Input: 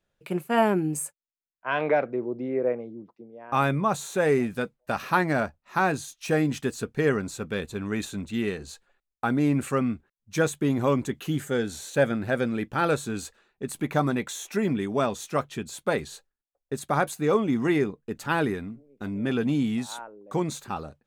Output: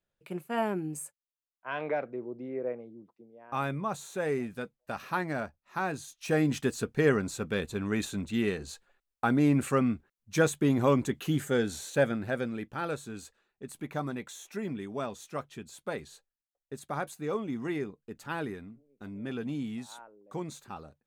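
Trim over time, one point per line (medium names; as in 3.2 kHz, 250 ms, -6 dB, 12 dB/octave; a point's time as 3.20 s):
5.88 s -8.5 dB
6.53 s -1 dB
11.71 s -1 dB
12.86 s -10 dB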